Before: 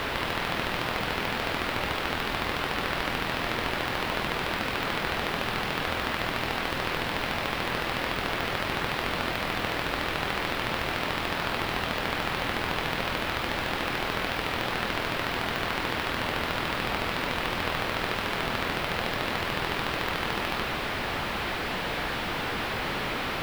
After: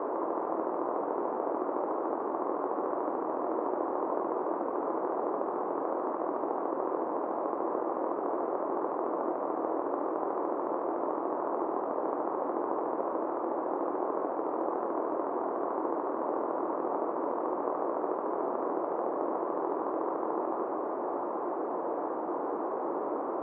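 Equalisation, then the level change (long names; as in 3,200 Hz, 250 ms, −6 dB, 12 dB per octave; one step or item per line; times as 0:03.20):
Chebyshev band-pass filter 320–1,100 Hz, order 3
spectral tilt −3.5 dB per octave
0.0 dB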